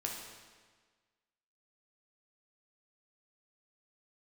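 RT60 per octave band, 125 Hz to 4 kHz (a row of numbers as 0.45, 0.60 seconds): 1.5, 1.5, 1.5, 1.5, 1.5, 1.3 seconds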